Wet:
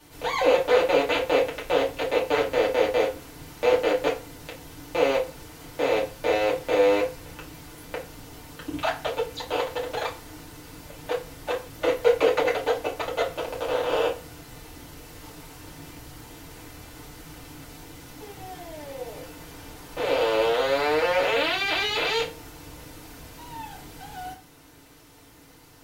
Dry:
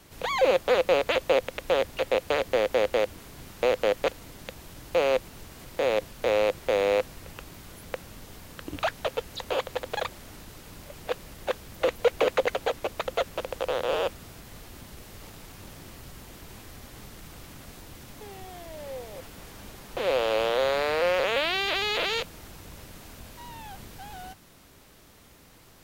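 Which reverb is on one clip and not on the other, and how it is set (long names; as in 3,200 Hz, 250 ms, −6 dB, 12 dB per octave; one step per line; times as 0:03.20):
feedback delay network reverb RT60 0.34 s, low-frequency decay 0.85×, high-frequency decay 0.8×, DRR −6 dB
level −4.5 dB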